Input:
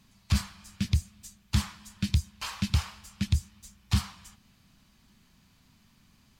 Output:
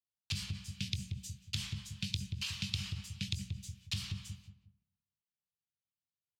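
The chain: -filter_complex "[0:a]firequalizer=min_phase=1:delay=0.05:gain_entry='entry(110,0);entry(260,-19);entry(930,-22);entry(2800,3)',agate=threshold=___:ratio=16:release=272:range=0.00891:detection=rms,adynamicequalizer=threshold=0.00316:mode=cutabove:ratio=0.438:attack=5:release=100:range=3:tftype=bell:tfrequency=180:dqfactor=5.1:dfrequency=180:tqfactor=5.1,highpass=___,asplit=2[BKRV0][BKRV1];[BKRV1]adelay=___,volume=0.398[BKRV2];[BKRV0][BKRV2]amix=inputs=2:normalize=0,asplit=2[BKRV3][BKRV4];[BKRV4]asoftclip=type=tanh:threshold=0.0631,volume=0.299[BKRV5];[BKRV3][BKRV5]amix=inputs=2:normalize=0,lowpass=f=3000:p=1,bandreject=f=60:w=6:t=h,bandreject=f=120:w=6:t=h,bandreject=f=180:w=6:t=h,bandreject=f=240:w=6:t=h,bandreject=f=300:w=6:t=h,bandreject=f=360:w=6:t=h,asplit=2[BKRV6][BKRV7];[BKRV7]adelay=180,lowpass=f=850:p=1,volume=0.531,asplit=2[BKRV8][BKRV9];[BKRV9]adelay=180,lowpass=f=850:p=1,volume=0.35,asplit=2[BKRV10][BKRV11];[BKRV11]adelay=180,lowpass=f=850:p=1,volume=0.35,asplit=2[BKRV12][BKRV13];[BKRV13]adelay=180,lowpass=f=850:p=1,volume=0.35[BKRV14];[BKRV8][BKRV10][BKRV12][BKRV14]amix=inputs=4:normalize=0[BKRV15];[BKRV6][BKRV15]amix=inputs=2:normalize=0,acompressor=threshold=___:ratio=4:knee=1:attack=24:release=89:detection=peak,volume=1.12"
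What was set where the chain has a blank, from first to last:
0.00316, 140, 21, 0.0112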